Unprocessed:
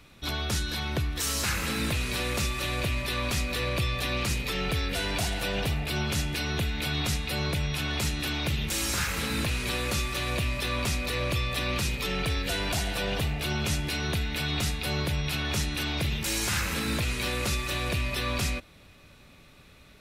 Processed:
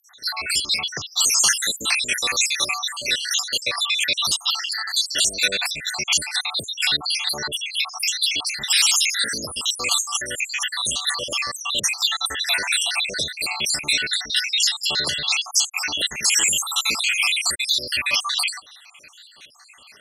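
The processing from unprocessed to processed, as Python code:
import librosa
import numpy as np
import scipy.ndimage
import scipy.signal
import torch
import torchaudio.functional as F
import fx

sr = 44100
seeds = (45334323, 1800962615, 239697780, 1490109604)

y = fx.spec_dropout(x, sr, seeds[0], share_pct=76)
y = fx.weighting(y, sr, curve='ITU-R 468')
y = y * librosa.db_to_amplitude(8.5)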